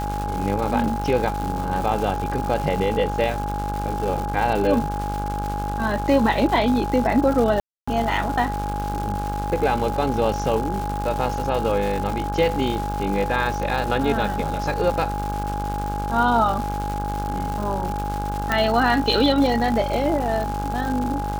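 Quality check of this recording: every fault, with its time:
mains buzz 50 Hz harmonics 33 −28 dBFS
surface crackle 340 per second −27 dBFS
whistle 830 Hz −27 dBFS
0:07.60–0:07.88: drop-out 275 ms
0:18.52: click −7 dBFS

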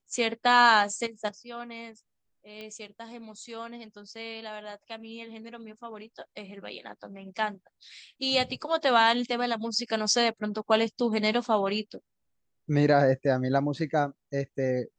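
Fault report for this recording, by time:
0:02.61: click −27 dBFS

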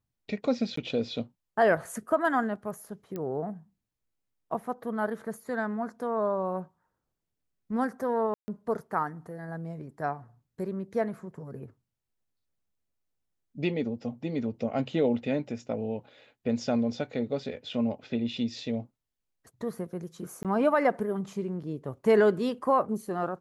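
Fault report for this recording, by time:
0:00.76–0:00.77: drop-out 14 ms
0:03.16: click −23 dBFS
0:08.34–0:08.48: drop-out 140 ms
0:20.43–0:20.45: drop-out 17 ms

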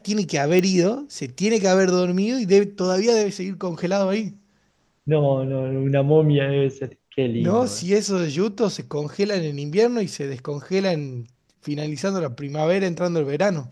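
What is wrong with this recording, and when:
0:00.59: click −8 dBFS

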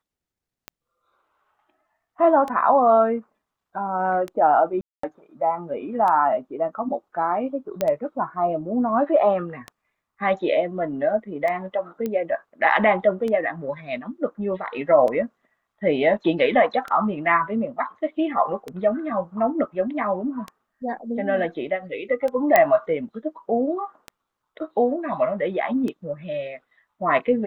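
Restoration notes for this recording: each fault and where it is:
scratch tick 33 1/3 rpm −17 dBFS
0:04.81–0:05.03: drop-out 224 ms
0:07.81: click −10 dBFS
0:12.06: click −15 dBFS
0:22.56: click −3 dBFS

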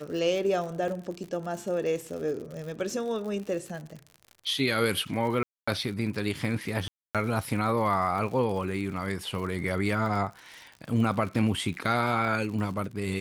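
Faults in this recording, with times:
surface crackle 80 per second −36 dBFS
0:00.88: drop-out 2.5 ms
0:05.43–0:05.67: drop-out 245 ms
0:06.88–0:07.15: drop-out 267 ms

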